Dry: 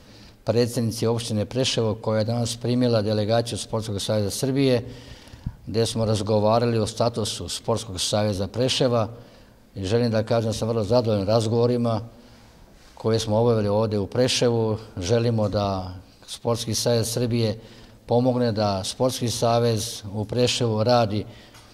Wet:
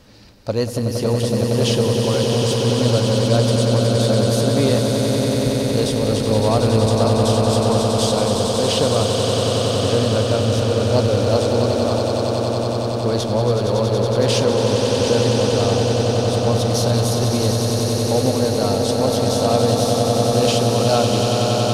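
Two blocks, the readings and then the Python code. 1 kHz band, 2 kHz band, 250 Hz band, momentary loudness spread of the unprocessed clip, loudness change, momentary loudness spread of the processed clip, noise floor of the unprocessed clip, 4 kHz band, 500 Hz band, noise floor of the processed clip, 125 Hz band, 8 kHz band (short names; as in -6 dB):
+6.0 dB, +6.0 dB, +5.5 dB, 9 LU, +5.5 dB, 3 LU, -50 dBFS, +6.0 dB, +5.5 dB, -21 dBFS, +7.0 dB, +6.0 dB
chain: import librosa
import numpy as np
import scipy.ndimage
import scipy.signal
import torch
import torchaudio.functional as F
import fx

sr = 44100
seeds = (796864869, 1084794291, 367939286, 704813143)

y = fx.echo_swell(x, sr, ms=93, loudest=8, wet_db=-7.0)
y = fx.cheby_harmonics(y, sr, harmonics=(8,), levels_db=(-34,), full_scale_db=-3.5)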